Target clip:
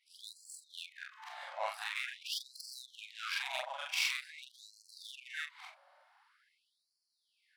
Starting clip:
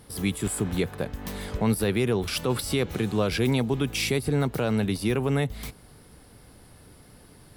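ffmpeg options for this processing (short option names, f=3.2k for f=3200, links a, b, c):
-af "afftfilt=real='re':imag='-im':win_size=4096:overlap=0.75,adynamicsmooth=sensitivity=7.5:basefreq=2.2k,afftfilt=real='re*gte(b*sr/1024,520*pow(4200/520,0.5+0.5*sin(2*PI*0.46*pts/sr)))':imag='im*gte(b*sr/1024,520*pow(4200/520,0.5+0.5*sin(2*PI*0.46*pts/sr)))':win_size=1024:overlap=0.75,volume=1.5dB"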